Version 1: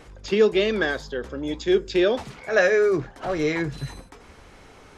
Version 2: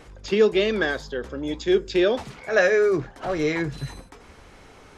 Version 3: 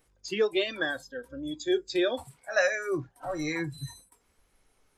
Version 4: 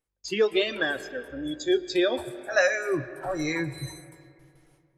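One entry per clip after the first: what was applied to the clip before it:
no processing that can be heard
noise reduction from a noise print of the clip's start 18 dB; high-shelf EQ 4,800 Hz +11 dB; level −6 dB
noise gate with hold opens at −56 dBFS; convolution reverb RT60 2.6 s, pre-delay 75 ms, DRR 14 dB; level +3 dB

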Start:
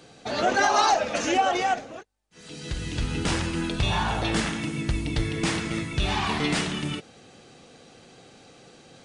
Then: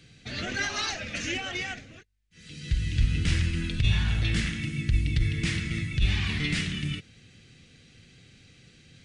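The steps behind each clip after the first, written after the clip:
drawn EQ curve 100 Hz 0 dB, 890 Hz −29 dB, 2,000 Hz −6 dB, 9,900 Hz −14 dB
compressor whose output falls as the input rises −25 dBFS, ratio −0.5
level +6 dB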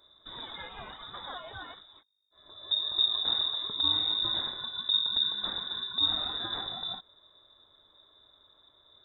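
flat-topped bell 750 Hz −14 dB 2.9 octaves
voice inversion scrambler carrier 3,700 Hz
level −6 dB

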